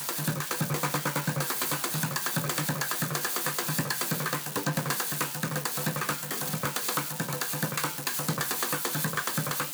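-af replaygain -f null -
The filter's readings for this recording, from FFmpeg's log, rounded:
track_gain = +13.3 dB
track_peak = 0.131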